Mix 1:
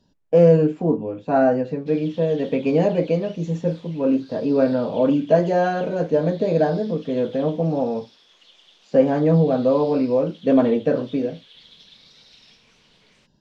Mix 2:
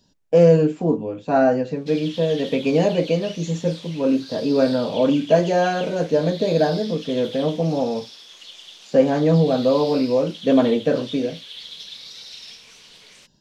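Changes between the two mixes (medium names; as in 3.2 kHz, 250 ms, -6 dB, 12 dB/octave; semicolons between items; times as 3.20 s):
background +5.5 dB; master: remove low-pass 2 kHz 6 dB/octave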